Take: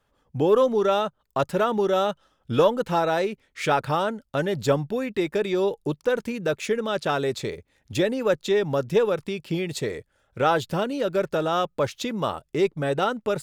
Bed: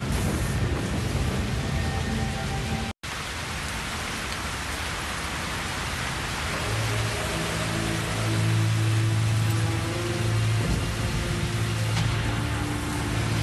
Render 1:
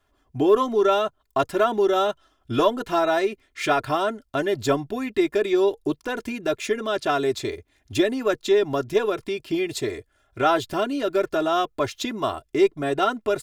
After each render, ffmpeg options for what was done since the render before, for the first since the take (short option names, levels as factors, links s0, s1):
-af "bandreject=f=470:w=12,aecho=1:1:2.9:0.75"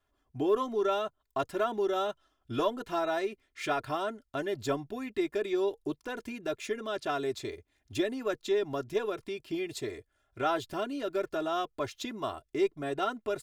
-af "volume=0.335"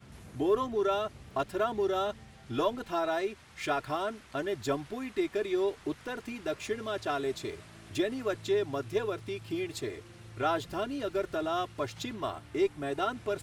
-filter_complex "[1:a]volume=0.0596[s0];[0:a][s0]amix=inputs=2:normalize=0"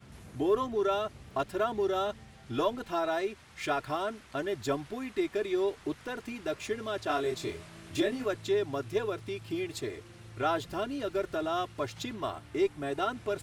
-filter_complex "[0:a]asettb=1/sr,asplit=3[s0][s1][s2];[s0]atrim=end=7.074[s3];[s1]atrim=start=7.07:end=8.26,asetpts=PTS-STARTPTS,afade=t=in:d=0.004:c=qsin,afade=t=out:st=1.186:d=0.004:c=qsin,asplit=2[s4][s5];[s5]adelay=24,volume=0.75[s6];[s4][s6]amix=inputs=2:normalize=0,atrim=end_sample=52479[s7];[s2]atrim=start=8.256[s8];[s3][s7]acrossfade=d=0.004:c1=hsin:c2=qsin[s9];[s9][s8]acrossfade=d=0.004:c1=qsin:c2=hsin"